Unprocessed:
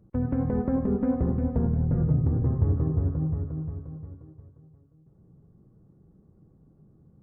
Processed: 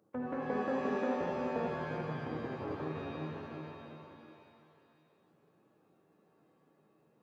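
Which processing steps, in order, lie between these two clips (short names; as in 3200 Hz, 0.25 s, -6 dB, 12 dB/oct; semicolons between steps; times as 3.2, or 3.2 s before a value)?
HPF 500 Hz 12 dB/oct; thin delay 0.192 s, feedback 82%, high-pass 1500 Hz, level -12 dB; shimmer reverb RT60 1.4 s, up +7 st, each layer -2 dB, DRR 4 dB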